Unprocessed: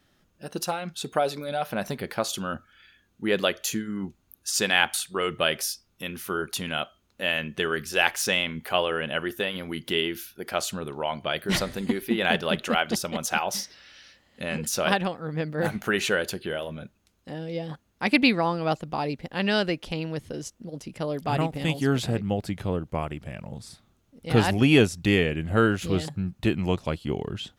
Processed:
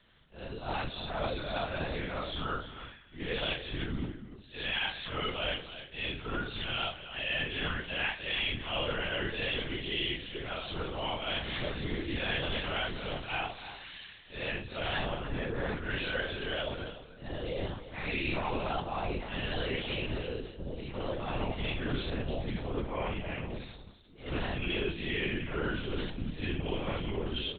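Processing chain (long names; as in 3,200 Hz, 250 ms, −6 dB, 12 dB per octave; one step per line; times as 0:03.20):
random phases in long frames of 200 ms
high-shelf EQ 3,000 Hz +11.5 dB
reversed playback
downward compressor 6 to 1, threshold −31 dBFS, peak gain reduction 16.5 dB
reversed playback
single-tap delay 301 ms −12.5 dB
on a send at −14 dB: convolution reverb RT60 1.3 s, pre-delay 6 ms
on the sum: linear-prediction vocoder at 8 kHz whisper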